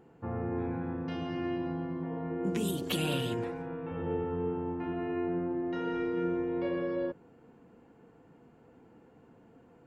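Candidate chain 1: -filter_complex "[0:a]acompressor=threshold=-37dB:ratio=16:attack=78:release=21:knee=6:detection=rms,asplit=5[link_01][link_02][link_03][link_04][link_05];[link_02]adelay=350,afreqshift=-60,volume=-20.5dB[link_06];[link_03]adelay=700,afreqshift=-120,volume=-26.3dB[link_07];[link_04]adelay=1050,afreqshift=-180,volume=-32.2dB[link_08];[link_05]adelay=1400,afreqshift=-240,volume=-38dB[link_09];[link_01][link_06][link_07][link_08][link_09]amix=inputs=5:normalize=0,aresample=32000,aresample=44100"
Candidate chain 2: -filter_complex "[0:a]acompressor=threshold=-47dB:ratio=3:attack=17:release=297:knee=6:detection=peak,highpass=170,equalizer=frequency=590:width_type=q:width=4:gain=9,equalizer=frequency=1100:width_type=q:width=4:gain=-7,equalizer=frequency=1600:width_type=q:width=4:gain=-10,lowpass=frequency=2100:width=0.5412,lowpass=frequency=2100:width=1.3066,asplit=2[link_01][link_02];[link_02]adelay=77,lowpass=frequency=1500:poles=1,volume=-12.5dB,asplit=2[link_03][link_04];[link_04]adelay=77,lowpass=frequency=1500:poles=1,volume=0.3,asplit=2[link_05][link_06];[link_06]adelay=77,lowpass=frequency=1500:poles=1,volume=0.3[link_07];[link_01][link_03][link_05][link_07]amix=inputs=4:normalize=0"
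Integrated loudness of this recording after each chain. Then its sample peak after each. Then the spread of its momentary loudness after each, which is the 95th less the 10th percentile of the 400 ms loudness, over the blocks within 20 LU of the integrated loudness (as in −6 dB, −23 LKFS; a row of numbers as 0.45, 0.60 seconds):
−36.5, −44.5 LKFS; −23.0, −31.0 dBFS; 4, 16 LU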